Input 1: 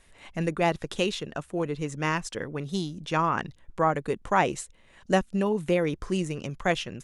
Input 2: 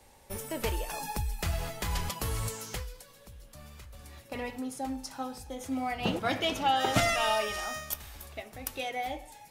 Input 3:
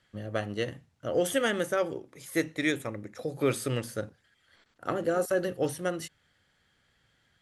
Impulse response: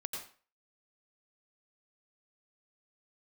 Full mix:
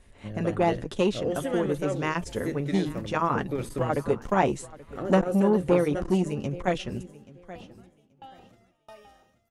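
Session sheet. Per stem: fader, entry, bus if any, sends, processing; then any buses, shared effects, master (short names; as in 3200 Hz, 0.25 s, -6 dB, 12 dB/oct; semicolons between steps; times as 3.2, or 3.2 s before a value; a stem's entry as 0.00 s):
+2.5 dB, 0.00 s, no send, echo send -19.5 dB, notch comb 160 Hz
-2.5 dB, 1.55 s, no send, echo send -10 dB, compressor 4:1, threshold -40 dBFS, peak gain reduction 16 dB; transient shaper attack -7 dB, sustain -1 dB; dB-ramp tremolo decaying 1.5 Hz, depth 37 dB
-2.5 dB, 0.10 s, no send, echo send -21.5 dB, limiter -19.5 dBFS, peak gain reduction 6 dB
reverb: off
echo: feedback echo 0.83 s, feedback 18%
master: tilt shelf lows +5 dB, about 730 Hz; core saturation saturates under 600 Hz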